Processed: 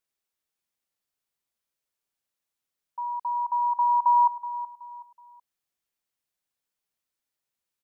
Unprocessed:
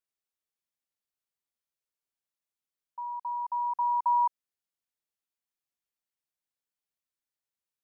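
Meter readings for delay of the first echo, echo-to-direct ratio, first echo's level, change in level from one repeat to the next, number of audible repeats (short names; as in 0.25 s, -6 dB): 0.374 s, -13.5 dB, -14.0 dB, -9.5 dB, 3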